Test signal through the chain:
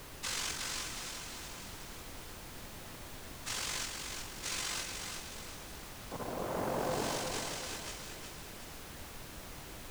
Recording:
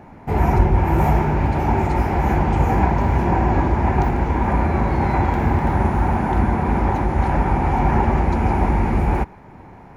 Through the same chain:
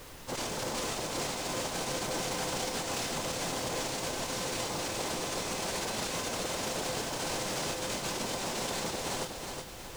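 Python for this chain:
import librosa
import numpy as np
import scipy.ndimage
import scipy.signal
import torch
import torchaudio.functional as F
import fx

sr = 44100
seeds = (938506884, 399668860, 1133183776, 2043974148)

p1 = fx.sine_speech(x, sr)
p2 = fx.lowpass(p1, sr, hz=1400.0, slope=6)
p3 = fx.over_compress(p2, sr, threshold_db=-18.0, ratio=-0.5)
p4 = fx.noise_vocoder(p3, sr, seeds[0], bands=2)
p5 = fx.comb_fb(p4, sr, f0_hz=510.0, decay_s=0.38, harmonics='all', damping=0.0, mix_pct=70)
p6 = fx.mod_noise(p5, sr, seeds[1], snr_db=20)
p7 = 10.0 ** (-25.0 / 20.0) * np.tanh(p6 / 10.0 ** (-25.0 / 20.0))
p8 = fx.dmg_noise_colour(p7, sr, seeds[2], colour='pink', level_db=-44.0)
p9 = p8 + fx.echo_feedback(p8, sr, ms=367, feedback_pct=41, wet_db=-5.5, dry=0)
y = p9 * 10.0 ** (-4.5 / 20.0)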